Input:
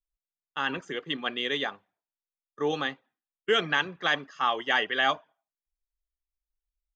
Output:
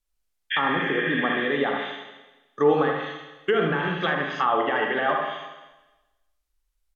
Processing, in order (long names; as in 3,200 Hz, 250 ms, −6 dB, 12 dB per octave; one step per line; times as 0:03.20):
healed spectral selection 0:00.54–0:01.46, 1,400–3,500 Hz after
brickwall limiter −21 dBFS, peak gain reduction 10.5 dB
single-tap delay 77 ms −6 dB
four-comb reverb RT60 1.1 s, combs from 32 ms, DRR 3 dB
treble cut that deepens with the level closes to 1,500 Hz, closed at −27 dBFS
level +9 dB